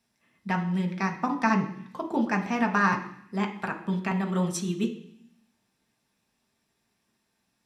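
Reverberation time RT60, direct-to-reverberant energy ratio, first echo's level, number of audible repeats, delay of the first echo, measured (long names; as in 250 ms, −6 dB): 0.65 s, 2.0 dB, no echo audible, no echo audible, no echo audible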